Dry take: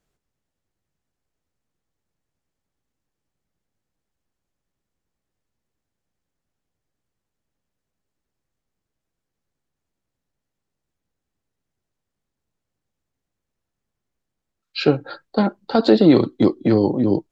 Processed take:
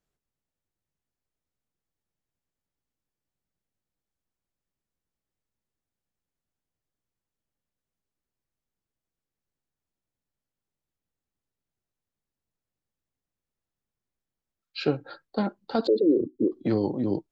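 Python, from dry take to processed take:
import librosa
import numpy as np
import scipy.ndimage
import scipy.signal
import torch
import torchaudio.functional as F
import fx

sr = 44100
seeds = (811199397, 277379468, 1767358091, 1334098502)

y = fx.envelope_sharpen(x, sr, power=3.0, at=(15.87, 16.52))
y = y * 10.0 ** (-8.5 / 20.0)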